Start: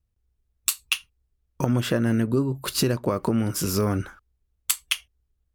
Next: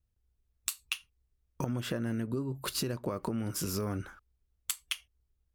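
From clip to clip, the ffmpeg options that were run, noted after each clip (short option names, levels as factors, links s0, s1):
-af "acompressor=threshold=0.0355:ratio=3,volume=0.668"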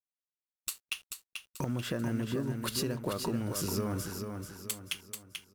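-filter_complex "[0:a]asoftclip=type=hard:threshold=0.0668,acrusher=bits=8:mix=0:aa=0.5,asplit=2[s0][s1];[s1]aecho=0:1:437|874|1311|1748|2185:0.501|0.2|0.0802|0.0321|0.0128[s2];[s0][s2]amix=inputs=2:normalize=0"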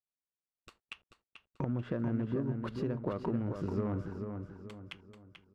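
-af "adynamicsmooth=sensitivity=1:basefreq=1100"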